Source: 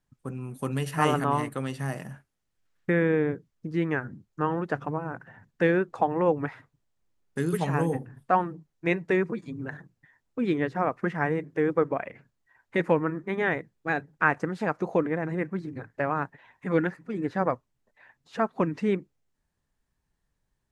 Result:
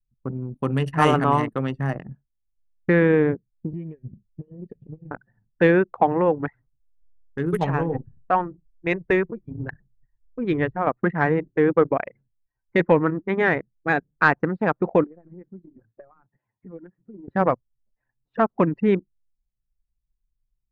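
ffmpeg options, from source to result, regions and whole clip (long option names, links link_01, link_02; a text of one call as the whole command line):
ffmpeg -i in.wav -filter_complex "[0:a]asettb=1/sr,asplit=3[link_01][link_02][link_03];[link_01]atrim=end=3.734[link_04];[link_02]atrim=start=3.73:end=5.11,asetpts=PTS-STARTPTS,afade=type=in:duration=0.004:curve=qsin,afade=type=out:start_time=1.376:duration=0.004:curve=qsin,aecho=1:1:1.7:0.61,atrim=end_sample=60858,acompressor=threshold=-33dB:ratio=20:attack=3.2:release=140:knee=1:detection=peak,asuperstop=centerf=970:order=8:qfactor=0.61[link_05];[link_03]atrim=start=5.106[link_06];[link_04][link_05]acrossfade=duration=0.004:curve1=hsin:curve2=qsin[link_07];[link_07][link_06]acrossfade=duration=0.004:curve1=qsin:curve2=hsin,asettb=1/sr,asplit=3[link_08][link_09][link_10];[link_08]atrim=end=6.094[link_11];[link_09]atrim=start=6.09:end=10.87,asetpts=PTS-STARTPTS,afade=type=in:duration=0.004:curve=qsin,afade=type=out:start_time=4.776:duration=0.004:curve=qsin,asubboost=boost=9.5:cutoff=70,tremolo=f=2:d=0.34[link_12];[link_10]atrim=start=10.866[link_13];[link_11][link_12]acrossfade=duration=0.004:curve1=hsin:curve2=qsin[link_14];[link_14][link_13]acrossfade=duration=0.004:curve1=qsin:curve2=hsin,asettb=1/sr,asplit=3[link_15][link_16][link_17];[link_15]atrim=end=15.044[link_18];[link_16]atrim=start=15.04:end=17.28,asetpts=PTS-STARTPTS,afade=type=in:duration=0.004:curve=qsin,afade=type=out:start_time=2.236:duration=0.004:curve=qsin,highpass=frequency=77:width=0.5412,highpass=frequency=77:width=1.3066,acompressor=threshold=-43dB:ratio=3:attack=3.2:release=140:knee=1:detection=peak[link_19];[link_17]atrim=start=17.276[link_20];[link_18][link_19]acrossfade=duration=0.004:curve1=hsin:curve2=qsin[link_21];[link_21][link_20]acrossfade=duration=0.004:curve1=qsin:curve2=hsin,anlmdn=10,highshelf=frequency=9000:gain=-9.5,acontrast=67" out.wav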